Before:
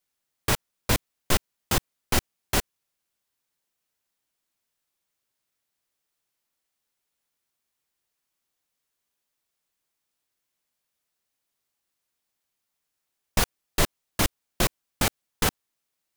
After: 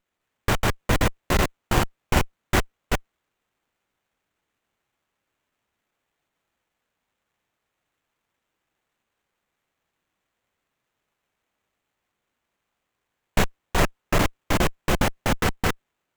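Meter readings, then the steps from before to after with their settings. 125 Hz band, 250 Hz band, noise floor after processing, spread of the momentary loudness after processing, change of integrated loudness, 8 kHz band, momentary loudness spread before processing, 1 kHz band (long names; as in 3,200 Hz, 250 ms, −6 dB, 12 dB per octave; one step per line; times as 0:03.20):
+6.0 dB, +6.0 dB, −81 dBFS, 6 LU, +2.5 dB, −3.0 dB, 1 LU, +6.0 dB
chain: delay that plays each chunk backwards 197 ms, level −0.5 dB
windowed peak hold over 9 samples
level +3 dB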